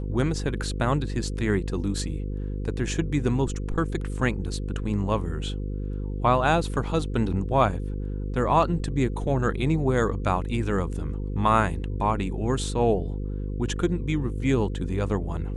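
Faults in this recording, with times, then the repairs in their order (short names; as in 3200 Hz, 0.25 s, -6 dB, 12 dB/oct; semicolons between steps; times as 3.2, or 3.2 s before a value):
buzz 50 Hz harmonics 10 -30 dBFS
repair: de-hum 50 Hz, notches 10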